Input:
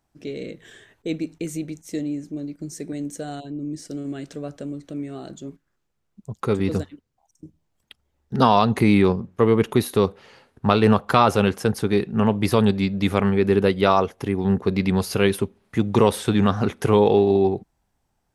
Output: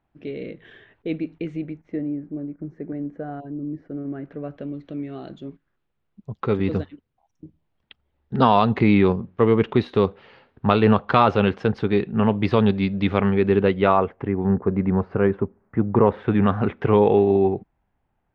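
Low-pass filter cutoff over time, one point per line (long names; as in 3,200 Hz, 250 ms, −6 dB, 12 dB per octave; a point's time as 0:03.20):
low-pass filter 24 dB per octave
0:01.45 3,100 Hz
0:02.12 1,700 Hz
0:04.20 1,700 Hz
0:04.74 3,600 Hz
0:13.47 3,600 Hz
0:14.65 1,600 Hz
0:15.95 1,600 Hz
0:16.48 2,700 Hz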